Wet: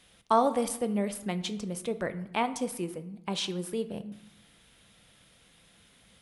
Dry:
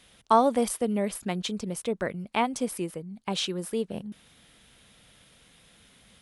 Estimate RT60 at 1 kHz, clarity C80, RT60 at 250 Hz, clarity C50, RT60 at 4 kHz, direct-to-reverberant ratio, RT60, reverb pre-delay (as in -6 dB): 0.95 s, 16.5 dB, 1.2 s, 14.0 dB, 0.60 s, 10.0 dB, 0.85 s, 6 ms